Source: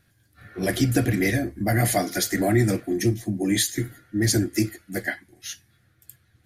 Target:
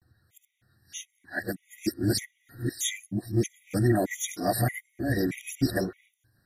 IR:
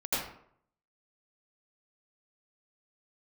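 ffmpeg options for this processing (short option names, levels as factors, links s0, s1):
-af "areverse,afftfilt=real='re*gt(sin(2*PI*1.6*pts/sr)*(1-2*mod(floor(b*sr/1024/1900),2)),0)':imag='im*gt(sin(2*PI*1.6*pts/sr)*(1-2*mod(floor(b*sr/1024/1900),2)),0)':win_size=1024:overlap=0.75,volume=0.708"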